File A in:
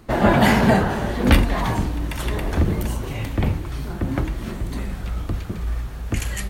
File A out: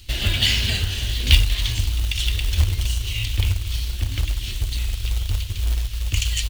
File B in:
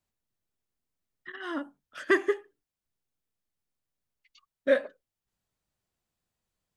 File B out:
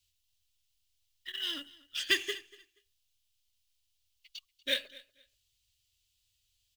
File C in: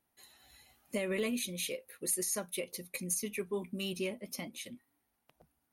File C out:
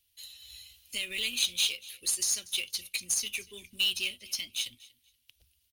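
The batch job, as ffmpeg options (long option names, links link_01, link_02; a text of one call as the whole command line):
ffmpeg -i in.wav -filter_complex "[0:a]acrossover=split=8800[link_01][link_02];[link_02]acompressor=threshold=-50dB:ratio=4:attack=1:release=60[link_03];[link_01][link_03]amix=inputs=2:normalize=0,firequalizer=gain_entry='entry(100,0);entry(150,-24);entry(320,-20);entry(840,-29);entry(2900,9);entry(8700,2)':delay=0.05:min_phase=1,aecho=1:1:239|478:0.0841|0.0177,asplit=2[link_04][link_05];[link_05]acompressor=threshold=-29dB:ratio=12,volume=1.5dB[link_06];[link_04][link_06]amix=inputs=2:normalize=0,acrusher=bits=4:mode=log:mix=0:aa=0.000001" out.wav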